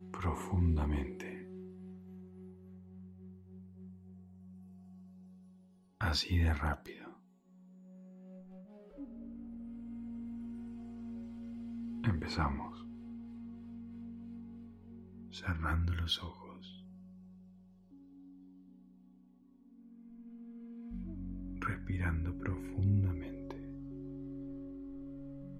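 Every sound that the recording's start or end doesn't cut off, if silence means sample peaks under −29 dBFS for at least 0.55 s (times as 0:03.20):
0:06.01–0:06.73
0:12.04–0:12.54
0:15.49–0:16.15
0:21.62–0:23.51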